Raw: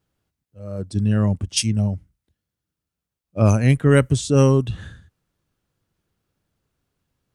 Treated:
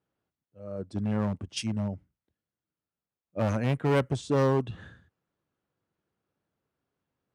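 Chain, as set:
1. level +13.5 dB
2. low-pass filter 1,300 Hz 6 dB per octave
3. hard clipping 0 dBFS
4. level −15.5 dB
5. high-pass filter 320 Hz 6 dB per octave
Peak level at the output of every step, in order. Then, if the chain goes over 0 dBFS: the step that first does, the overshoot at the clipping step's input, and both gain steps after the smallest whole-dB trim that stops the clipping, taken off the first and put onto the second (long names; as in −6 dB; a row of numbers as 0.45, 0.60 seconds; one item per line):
+10.0, +9.5, 0.0, −15.5, −11.5 dBFS
step 1, 9.5 dB
step 1 +3.5 dB, step 4 −5.5 dB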